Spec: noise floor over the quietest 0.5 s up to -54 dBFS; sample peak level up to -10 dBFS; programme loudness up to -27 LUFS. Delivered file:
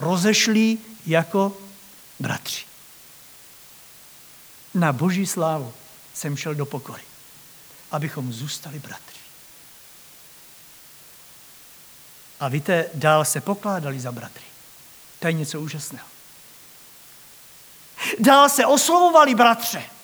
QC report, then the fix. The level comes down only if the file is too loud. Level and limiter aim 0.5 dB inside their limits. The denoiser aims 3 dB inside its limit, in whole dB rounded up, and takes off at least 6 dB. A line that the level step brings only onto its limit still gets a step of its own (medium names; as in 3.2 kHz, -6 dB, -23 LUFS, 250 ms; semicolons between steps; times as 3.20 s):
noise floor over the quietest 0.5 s -47 dBFS: fail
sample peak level -2.0 dBFS: fail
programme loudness -20.5 LUFS: fail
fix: noise reduction 6 dB, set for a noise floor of -47 dBFS; trim -7 dB; peak limiter -10.5 dBFS